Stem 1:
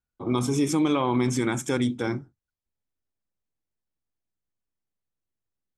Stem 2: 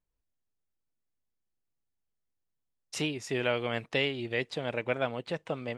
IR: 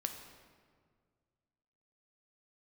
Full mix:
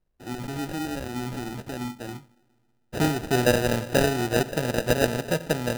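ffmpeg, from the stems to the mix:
-filter_complex "[0:a]aemphasis=mode=production:type=50fm,volume=-12.5dB,asplit=2[a][b];[b]volume=-18dB[c];[1:a]volume=1.5dB,asplit=2[d][e];[e]volume=-3dB[f];[2:a]atrim=start_sample=2205[g];[c][f]amix=inputs=2:normalize=0[h];[h][g]afir=irnorm=-1:irlink=0[i];[a][d][i]amix=inputs=3:normalize=0,lowshelf=f=460:g=5.5,acrusher=samples=40:mix=1:aa=0.000001"

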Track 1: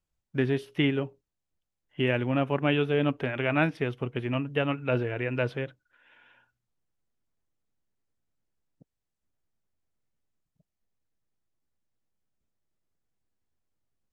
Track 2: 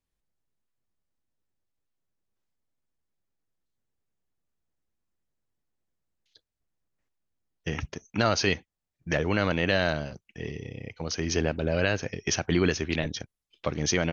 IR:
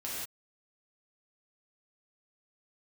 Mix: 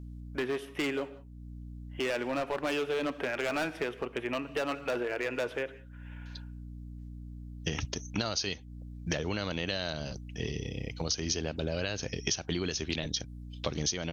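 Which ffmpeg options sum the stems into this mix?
-filter_complex "[0:a]highpass=410,equalizer=f=4.4k:t=o:w=0.56:g=-10,volume=28dB,asoftclip=hard,volume=-28dB,volume=3dB,asplit=3[a][b][c];[b]volume=-18.5dB[d];[1:a]highshelf=f=2.8k:t=q:w=1.5:g=7.5,aeval=exprs='val(0)+0.00708*(sin(2*PI*60*n/s)+sin(2*PI*2*60*n/s)/2+sin(2*PI*3*60*n/s)/3+sin(2*PI*4*60*n/s)/4+sin(2*PI*5*60*n/s)/5)':c=same,volume=1dB[e];[c]apad=whole_len=622715[f];[e][f]sidechaincompress=threshold=-41dB:ratio=8:attack=16:release=489[g];[2:a]atrim=start_sample=2205[h];[d][h]afir=irnorm=-1:irlink=0[i];[a][g][i]amix=inputs=3:normalize=0,acompressor=threshold=-28dB:ratio=12"

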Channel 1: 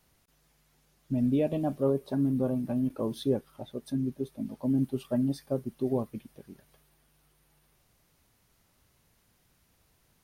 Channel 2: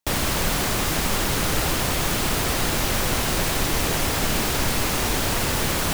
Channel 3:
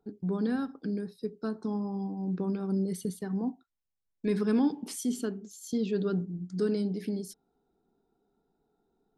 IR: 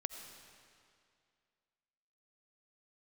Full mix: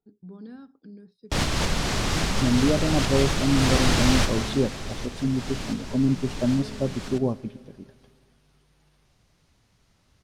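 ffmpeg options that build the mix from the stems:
-filter_complex "[0:a]adelay=1300,volume=1dB,asplit=2[a][b];[b]volume=-11dB[c];[1:a]adelay=1250,volume=-2dB,afade=t=out:st=4.23:d=0.64:silence=0.237137,asplit=2[d][e];[e]volume=-7dB[f];[2:a]volume=-14.5dB,asplit=2[g][h];[h]apad=whole_len=316668[i];[d][i]sidechaincompress=threshold=-51dB:ratio=8:attack=23:release=265[j];[3:a]atrim=start_sample=2205[k];[c][f]amix=inputs=2:normalize=0[l];[l][k]afir=irnorm=-1:irlink=0[m];[a][j][g][m]amix=inputs=4:normalize=0,lowpass=5.1k,bass=f=250:g=4,treble=f=4k:g=6"

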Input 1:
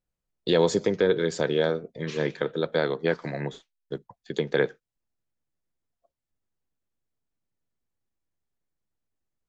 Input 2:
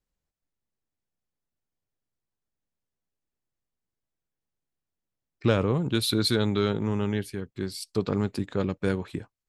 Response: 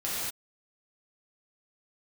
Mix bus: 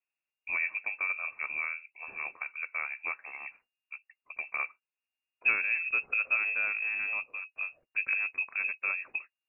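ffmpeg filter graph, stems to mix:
-filter_complex "[0:a]volume=-8.5dB[a];[1:a]highpass=130,equalizer=f=250:t=o:w=0.37:g=13.5,volume=-4.5dB[b];[a][b]amix=inputs=2:normalize=0,lowshelf=f=380:g=-5.5,lowpass=f=2.4k:t=q:w=0.5098,lowpass=f=2.4k:t=q:w=0.6013,lowpass=f=2.4k:t=q:w=0.9,lowpass=f=2.4k:t=q:w=2.563,afreqshift=-2800"

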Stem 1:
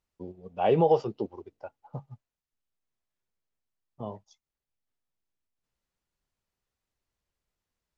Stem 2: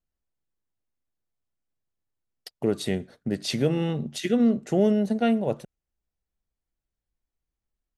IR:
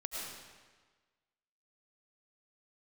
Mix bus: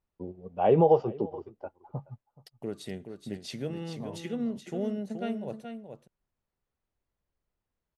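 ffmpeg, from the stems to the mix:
-filter_complex "[0:a]lowpass=f=1.2k:p=1,volume=2dB,asplit=2[a][b];[b]volume=-21dB[c];[1:a]volume=-11.5dB,asplit=3[d][e][f];[e]volume=-7.5dB[g];[f]apad=whole_len=351493[h];[a][h]sidechaincompress=threshold=-44dB:ratio=8:attack=16:release=306[i];[c][g]amix=inputs=2:normalize=0,aecho=0:1:426:1[j];[i][d][j]amix=inputs=3:normalize=0"

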